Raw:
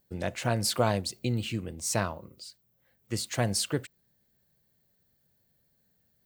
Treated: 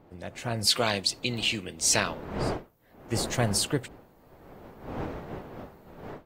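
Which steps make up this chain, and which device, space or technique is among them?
0:00.67–0:02.34: meter weighting curve D
smartphone video outdoors (wind on the microphone 550 Hz −42 dBFS; automatic gain control gain up to 14.5 dB; level −8.5 dB; AAC 48 kbit/s 48,000 Hz)

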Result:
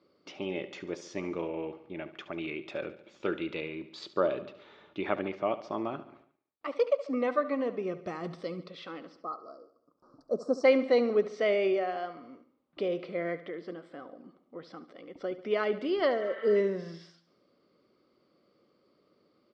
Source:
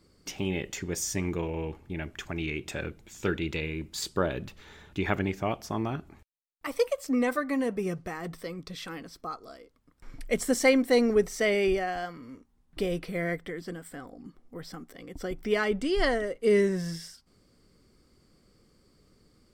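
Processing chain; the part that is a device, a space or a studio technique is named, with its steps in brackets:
0:08.05–0:08.61: bass and treble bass +11 dB, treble +12 dB
0:09.12–0:10.64: elliptic band-stop filter 1,300–4,800 Hz, stop band 50 dB
0:16.23–0:16.54: healed spectral selection 780–4,000 Hz before
kitchen radio (loudspeaker in its box 230–4,200 Hz, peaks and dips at 340 Hz +4 dB, 580 Hz +9 dB, 1,200 Hz +6 dB, 1,700 Hz −5 dB)
repeating echo 71 ms, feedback 55%, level −15 dB
level −4.5 dB

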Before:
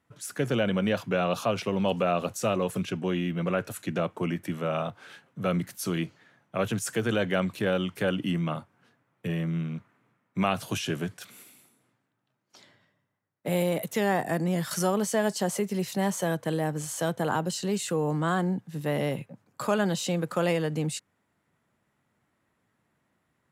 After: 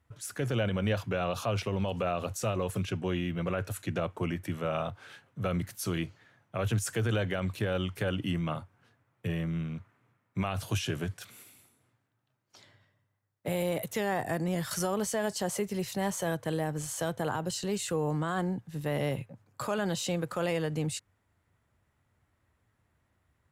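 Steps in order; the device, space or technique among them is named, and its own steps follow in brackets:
car stereo with a boomy subwoofer (low shelf with overshoot 120 Hz +12 dB, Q 1.5; brickwall limiter −18.5 dBFS, peak gain reduction 6.5 dB)
level −2 dB

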